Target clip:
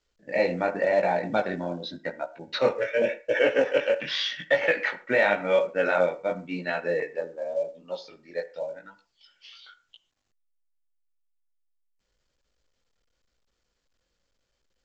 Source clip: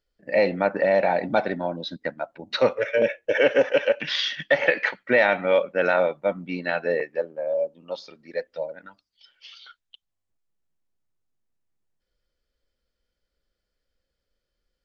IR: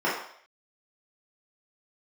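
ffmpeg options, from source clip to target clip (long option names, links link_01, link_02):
-filter_complex "[0:a]flanger=delay=16:depth=7.3:speed=0.89,asplit=2[link_01][link_02];[1:a]atrim=start_sample=2205,afade=type=out:start_time=0.16:duration=0.01,atrim=end_sample=7497,adelay=33[link_03];[link_02][link_03]afir=irnorm=-1:irlink=0,volume=-29dB[link_04];[link_01][link_04]amix=inputs=2:normalize=0" -ar 16000 -c:a pcm_mulaw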